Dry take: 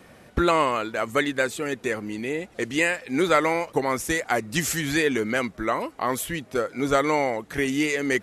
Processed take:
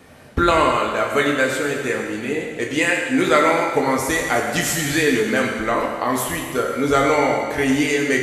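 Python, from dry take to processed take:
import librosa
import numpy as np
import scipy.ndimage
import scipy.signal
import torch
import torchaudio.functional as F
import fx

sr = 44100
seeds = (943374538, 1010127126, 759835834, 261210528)

y = fx.rev_fdn(x, sr, rt60_s=1.8, lf_ratio=0.85, hf_ratio=0.95, size_ms=68.0, drr_db=-1.0)
y = y * librosa.db_to_amplitude(2.0)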